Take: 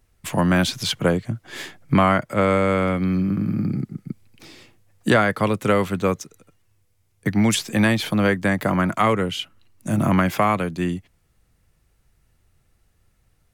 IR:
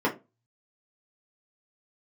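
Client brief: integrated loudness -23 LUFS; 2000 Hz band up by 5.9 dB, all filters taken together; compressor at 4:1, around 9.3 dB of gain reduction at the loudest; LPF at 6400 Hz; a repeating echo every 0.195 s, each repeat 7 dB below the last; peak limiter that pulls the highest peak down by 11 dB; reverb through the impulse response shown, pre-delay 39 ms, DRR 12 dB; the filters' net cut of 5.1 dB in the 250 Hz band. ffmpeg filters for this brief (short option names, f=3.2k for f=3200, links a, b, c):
-filter_complex "[0:a]lowpass=6.4k,equalizer=f=250:t=o:g=-7.5,equalizer=f=2k:t=o:g=7.5,acompressor=threshold=-22dB:ratio=4,alimiter=limit=-17.5dB:level=0:latency=1,aecho=1:1:195|390|585|780|975:0.447|0.201|0.0905|0.0407|0.0183,asplit=2[a][b];[1:a]atrim=start_sample=2205,adelay=39[c];[b][c]afir=irnorm=-1:irlink=0,volume=-25dB[d];[a][d]amix=inputs=2:normalize=0,volume=5dB"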